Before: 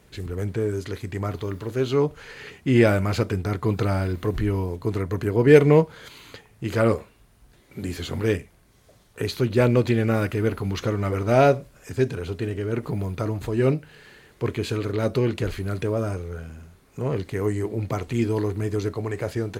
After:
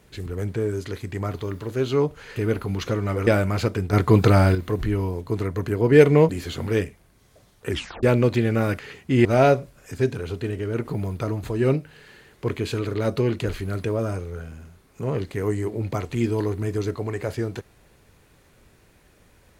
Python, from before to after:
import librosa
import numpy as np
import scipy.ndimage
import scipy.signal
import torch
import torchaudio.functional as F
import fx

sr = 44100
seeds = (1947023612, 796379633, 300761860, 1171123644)

y = fx.edit(x, sr, fx.swap(start_s=2.36, length_s=0.46, other_s=10.32, other_length_s=0.91),
    fx.clip_gain(start_s=3.48, length_s=0.62, db=7.5),
    fx.cut(start_s=5.84, length_s=1.98),
    fx.tape_stop(start_s=9.22, length_s=0.34), tone=tone)